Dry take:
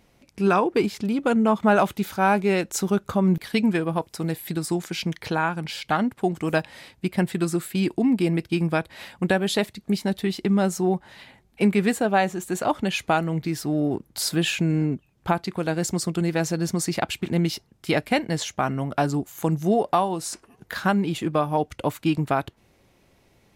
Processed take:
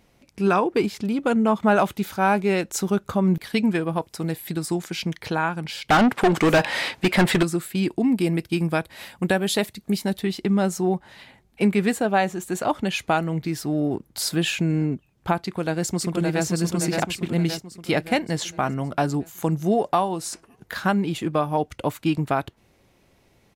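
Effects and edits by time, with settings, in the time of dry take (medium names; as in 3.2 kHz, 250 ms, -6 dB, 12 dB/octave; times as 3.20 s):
5.90–7.43 s: overdrive pedal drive 28 dB, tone 3.4 kHz, clips at -9 dBFS
8.03–10.19 s: treble shelf 9.2 kHz +9.5 dB
15.40–16.45 s: echo throw 570 ms, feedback 50%, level -3.5 dB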